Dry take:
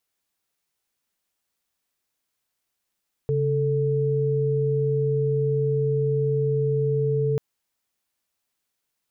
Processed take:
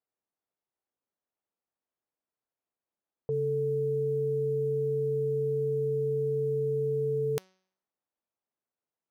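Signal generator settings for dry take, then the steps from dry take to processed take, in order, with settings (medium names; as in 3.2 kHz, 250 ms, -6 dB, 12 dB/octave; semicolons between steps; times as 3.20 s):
chord C#3/A4 sine, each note -22.5 dBFS 4.09 s
level-controlled noise filter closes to 660 Hz, open at -20 dBFS; tilt EQ +3.5 dB/octave; de-hum 187.2 Hz, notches 34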